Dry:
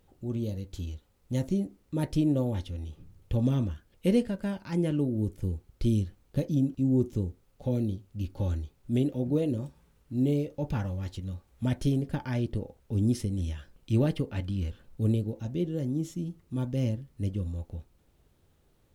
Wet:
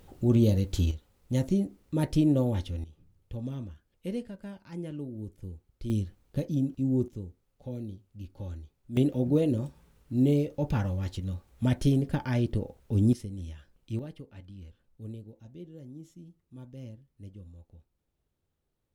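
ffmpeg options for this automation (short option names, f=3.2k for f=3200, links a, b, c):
-af "asetnsamples=n=441:p=0,asendcmd='0.91 volume volume 2dB;2.84 volume volume -10dB;5.9 volume volume -2dB;7.08 volume volume -9dB;8.97 volume volume 2.5dB;13.13 volume volume -7.5dB;13.99 volume volume -15dB',volume=10dB"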